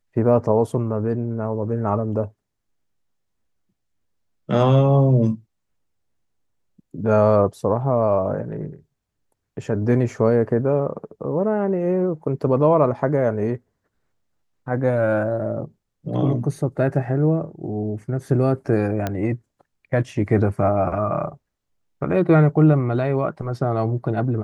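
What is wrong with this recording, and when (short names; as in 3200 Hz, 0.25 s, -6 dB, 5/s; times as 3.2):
19.07 pop -10 dBFS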